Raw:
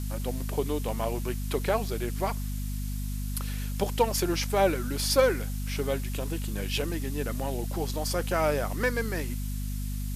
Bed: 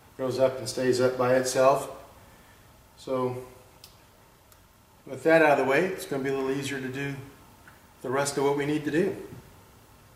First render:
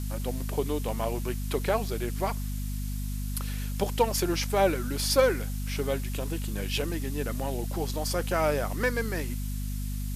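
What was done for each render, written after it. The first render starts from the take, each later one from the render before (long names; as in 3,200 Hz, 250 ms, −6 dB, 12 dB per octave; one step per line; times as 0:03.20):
no processing that can be heard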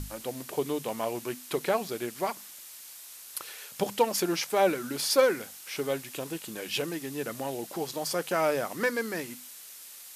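mains-hum notches 50/100/150/200/250 Hz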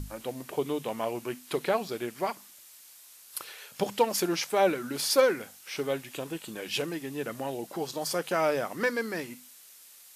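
noise reduction from a noise print 6 dB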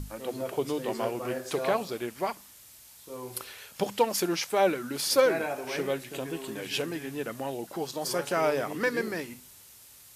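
mix in bed −12.5 dB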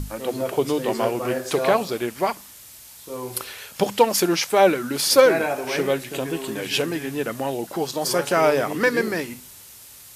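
level +8 dB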